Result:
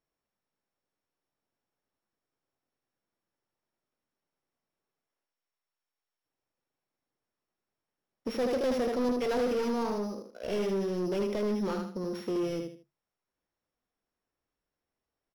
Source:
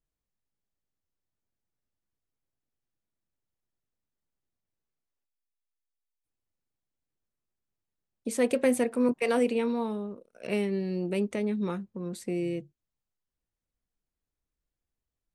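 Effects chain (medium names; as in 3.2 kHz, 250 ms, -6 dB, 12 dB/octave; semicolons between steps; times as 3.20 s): sorted samples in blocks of 8 samples; feedback delay 77 ms, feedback 27%, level -7 dB; overdrive pedal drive 25 dB, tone 1.1 kHz, clips at -14 dBFS; trim -7 dB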